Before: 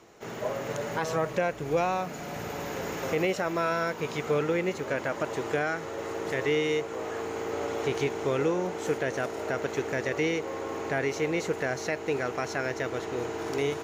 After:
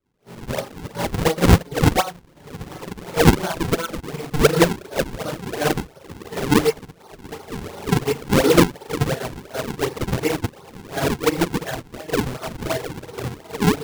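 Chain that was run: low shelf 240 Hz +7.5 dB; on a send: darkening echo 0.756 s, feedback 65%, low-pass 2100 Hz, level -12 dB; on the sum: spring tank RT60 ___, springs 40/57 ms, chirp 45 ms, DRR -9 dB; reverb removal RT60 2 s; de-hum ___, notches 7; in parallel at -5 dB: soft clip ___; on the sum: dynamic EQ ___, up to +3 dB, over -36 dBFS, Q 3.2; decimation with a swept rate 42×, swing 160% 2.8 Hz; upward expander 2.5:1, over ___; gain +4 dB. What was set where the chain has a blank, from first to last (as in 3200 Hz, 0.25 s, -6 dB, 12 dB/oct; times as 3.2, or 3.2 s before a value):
1 s, 51.15 Hz, -15 dBFS, 880 Hz, -32 dBFS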